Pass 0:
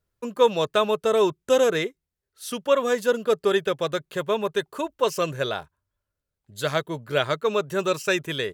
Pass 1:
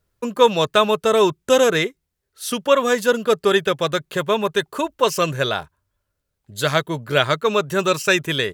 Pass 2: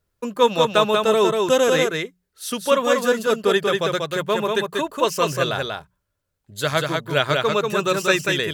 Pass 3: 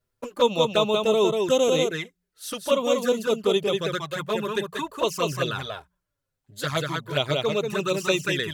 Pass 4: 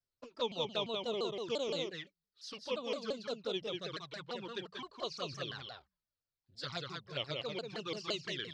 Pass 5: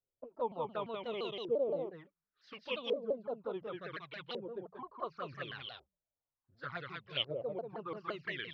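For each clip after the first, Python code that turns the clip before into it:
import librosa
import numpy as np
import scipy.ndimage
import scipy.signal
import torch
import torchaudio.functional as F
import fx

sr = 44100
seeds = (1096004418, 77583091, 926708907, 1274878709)

y1 = fx.dynamic_eq(x, sr, hz=470.0, q=0.98, threshold_db=-32.0, ratio=4.0, max_db=-4)
y1 = y1 * librosa.db_to_amplitude(7.5)
y2 = fx.hum_notches(y1, sr, base_hz=60, count=3)
y2 = y2 + 10.0 ** (-3.5 / 20.0) * np.pad(y2, (int(189 * sr / 1000.0), 0))[:len(y2)]
y2 = y2 * librosa.db_to_amplitude(-2.5)
y3 = fx.env_flanger(y2, sr, rest_ms=8.0, full_db=-15.5)
y3 = y3 * librosa.db_to_amplitude(-2.0)
y4 = fx.ladder_lowpass(y3, sr, hz=5100.0, resonance_pct=70)
y4 = fx.vibrato_shape(y4, sr, shape='saw_down', rate_hz=5.8, depth_cents=250.0)
y4 = y4 * librosa.db_to_amplitude(-5.0)
y5 = fx.filter_lfo_lowpass(y4, sr, shape='saw_up', hz=0.69, low_hz=460.0, high_hz=3400.0, q=2.8)
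y5 = y5 * librosa.db_to_amplitude(-3.0)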